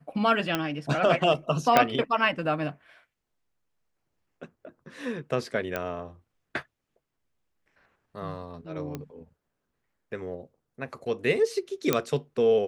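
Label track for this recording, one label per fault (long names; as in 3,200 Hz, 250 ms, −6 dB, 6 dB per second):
0.550000	0.550000	click −11 dBFS
1.770000	1.770000	click −5 dBFS
5.760000	5.760000	click −15 dBFS
8.950000	8.950000	click −20 dBFS
11.930000	11.930000	click −7 dBFS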